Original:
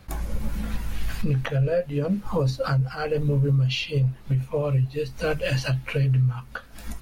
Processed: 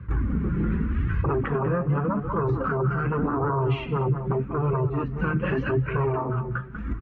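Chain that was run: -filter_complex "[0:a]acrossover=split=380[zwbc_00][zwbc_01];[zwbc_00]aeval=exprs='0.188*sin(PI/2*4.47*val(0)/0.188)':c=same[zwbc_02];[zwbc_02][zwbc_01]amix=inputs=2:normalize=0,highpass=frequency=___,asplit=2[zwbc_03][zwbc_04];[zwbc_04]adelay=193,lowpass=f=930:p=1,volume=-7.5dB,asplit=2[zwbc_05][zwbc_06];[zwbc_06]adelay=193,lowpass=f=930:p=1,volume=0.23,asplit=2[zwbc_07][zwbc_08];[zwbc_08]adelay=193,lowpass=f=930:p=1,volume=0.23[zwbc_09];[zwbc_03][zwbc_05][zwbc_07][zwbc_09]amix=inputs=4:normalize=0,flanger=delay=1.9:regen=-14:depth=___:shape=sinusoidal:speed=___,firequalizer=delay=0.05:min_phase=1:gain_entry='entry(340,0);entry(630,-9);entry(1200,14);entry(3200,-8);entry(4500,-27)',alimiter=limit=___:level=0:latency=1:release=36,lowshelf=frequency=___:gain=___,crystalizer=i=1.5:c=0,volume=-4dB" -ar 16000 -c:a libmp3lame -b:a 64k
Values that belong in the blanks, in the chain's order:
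65, 3.9, 0.84, -15dB, 440, 5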